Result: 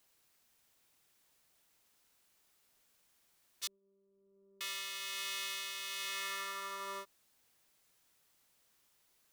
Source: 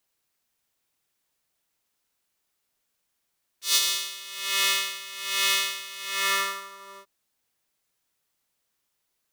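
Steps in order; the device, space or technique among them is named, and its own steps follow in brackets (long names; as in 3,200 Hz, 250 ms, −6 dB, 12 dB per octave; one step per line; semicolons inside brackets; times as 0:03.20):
serial compression, peaks first (downward compressor, threshold −33 dBFS, peak gain reduction 16 dB; downward compressor 2.5 to 1, threshold −43 dBFS, peak gain reduction 9.5 dB)
0:03.67–0:04.61: inverse Chebyshev low-pass filter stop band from 2,200 Hz, stop band 80 dB
level +4.5 dB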